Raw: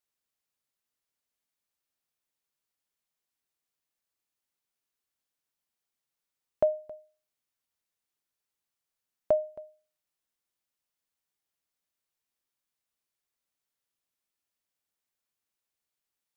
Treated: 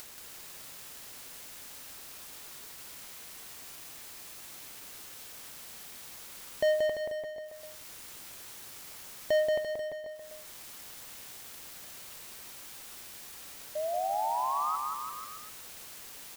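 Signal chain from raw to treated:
in parallel at +1.5 dB: upward compression, threshold −29 dBFS
on the sum: brickwall limiter −18 dBFS, peak gain reduction 10 dB
leveller curve on the samples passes 3
sound drawn into the spectrogram rise, 0:13.75–0:14.76, 600–1,300 Hz −28 dBFS
bouncing-ball delay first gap 180 ms, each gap 0.9×, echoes 5
on a send at −18 dB: convolution reverb RT60 1.1 s, pre-delay 8 ms
on the sum: level −4.5 dB

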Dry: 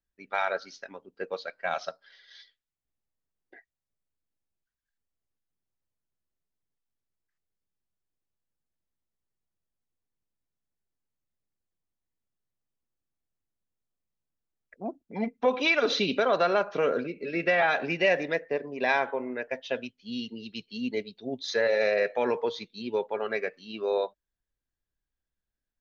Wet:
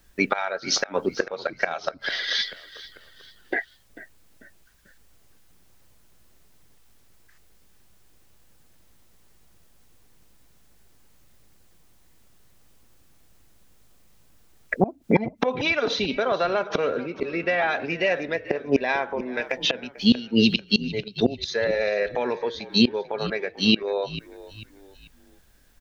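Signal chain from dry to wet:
gate with flip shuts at −28 dBFS, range −26 dB
in parallel at −1 dB: downward compressor, threshold −58 dBFS, peak gain reduction 21.5 dB
on the sum: echo with shifted repeats 442 ms, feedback 41%, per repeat −55 Hz, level −17.5 dB
boost into a limiter +30.5 dB
0:19.37–0:19.95: multiband upward and downward compressor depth 70%
level −6 dB

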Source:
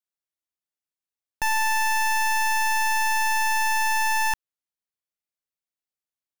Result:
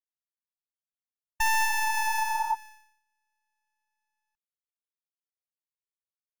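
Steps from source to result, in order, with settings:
source passing by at 0:01.75, 6 m/s, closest 2.7 metres
noise gate −27 dBFS, range −54 dB
healed spectral selection 0:01.67–0:02.52, 670–1,500 Hz before
downward compressor 5 to 1, threshold −31 dBFS, peak gain reduction 12 dB
level +6.5 dB

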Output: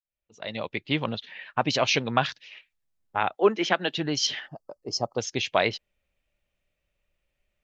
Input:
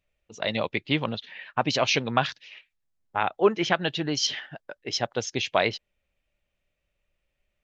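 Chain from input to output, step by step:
fade in at the beginning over 1.09 s
0:03.35–0:03.98: Butterworth high-pass 190 Hz
0:04.48–0:05.18: gain on a spectral selection 1,300–4,200 Hz −23 dB

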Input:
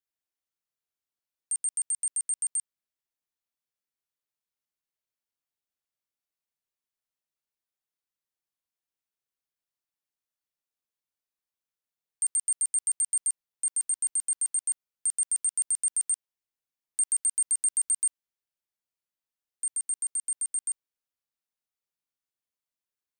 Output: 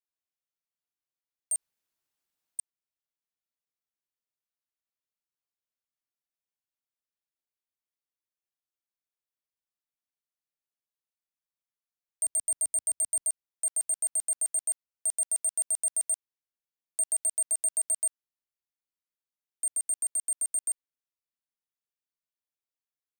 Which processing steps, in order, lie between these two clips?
0:01.56–0:02.59: fill with room tone
0:12.26–0:13.29: low-shelf EQ 220 Hz +11.5 dB
leveller curve on the samples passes 2
level −3 dB

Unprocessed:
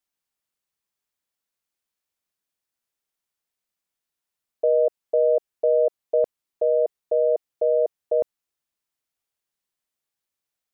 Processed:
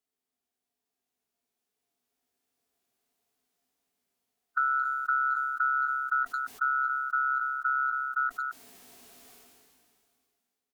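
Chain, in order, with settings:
frequency inversion band by band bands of 2,000 Hz
source passing by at 0:03.24, 12 m/s, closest 14 metres
double-tracking delay 16 ms −8.5 dB
hollow resonant body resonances 260/410/700 Hz, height 12 dB, ringing for 50 ms
downward compressor 10 to 1, threshold −31 dBFS, peak gain reduction 12 dB
harmonic and percussive parts rebalanced percussive −6 dB
far-end echo of a speakerphone 220 ms, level −22 dB
level that may fall only so fast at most 25 dB per second
level +6.5 dB

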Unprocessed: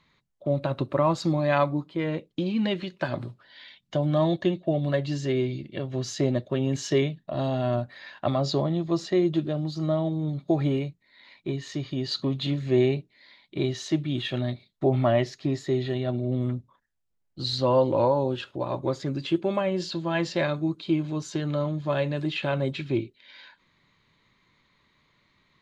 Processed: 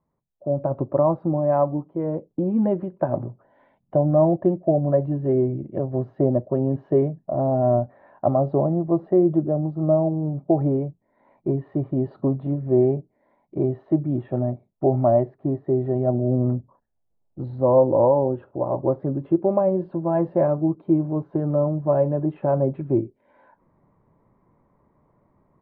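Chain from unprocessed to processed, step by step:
automatic gain control gain up to 14.5 dB
transistor ladder low-pass 930 Hz, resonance 35%

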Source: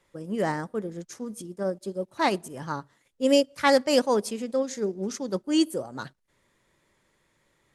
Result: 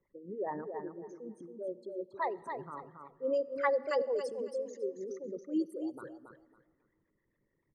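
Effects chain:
spectral envelope exaggerated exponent 3
two-band tremolo in antiphase 7 Hz, depth 70%, crossover 570 Hz
low-pass that shuts in the quiet parts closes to 2,300 Hz, open at −21.5 dBFS
repeating echo 276 ms, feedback 22%, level −6.5 dB
on a send at −21 dB: convolution reverb RT60 2.0 s, pre-delay 54 ms
on the sum: level −7 dB

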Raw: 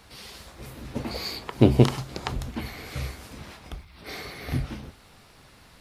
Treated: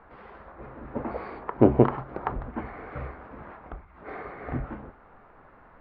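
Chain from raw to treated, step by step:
low-pass filter 1,500 Hz 24 dB per octave
parametric band 100 Hz −12 dB 2.9 octaves
level +5.5 dB

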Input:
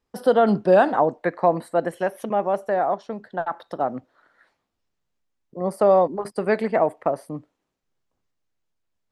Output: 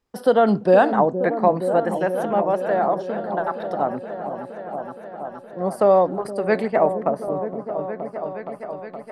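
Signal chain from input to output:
echo whose low-pass opens from repeat to repeat 469 ms, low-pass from 400 Hz, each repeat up 1 octave, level −6 dB
0:06.27–0:07.28: multiband upward and downward expander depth 40%
level +1 dB

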